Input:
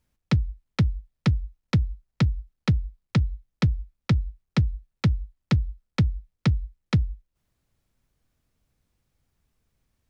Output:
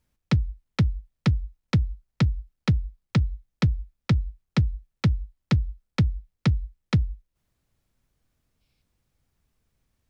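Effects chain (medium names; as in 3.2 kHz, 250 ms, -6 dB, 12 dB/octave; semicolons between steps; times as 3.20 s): time-frequency box 8.61–8.82 s, 2.1–5.6 kHz +9 dB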